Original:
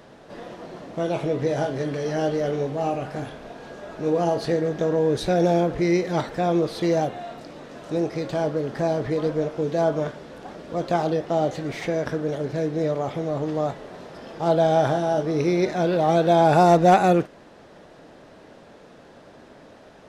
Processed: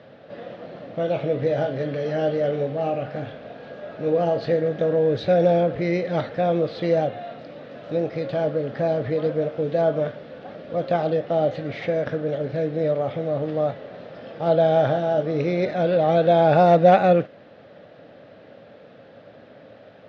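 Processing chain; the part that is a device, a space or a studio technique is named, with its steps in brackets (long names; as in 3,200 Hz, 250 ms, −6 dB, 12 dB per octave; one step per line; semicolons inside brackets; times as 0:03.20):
guitar cabinet (loudspeaker in its box 100–4,000 Hz, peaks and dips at 110 Hz +7 dB, 360 Hz −6 dB, 550 Hz +7 dB, 970 Hz −9 dB)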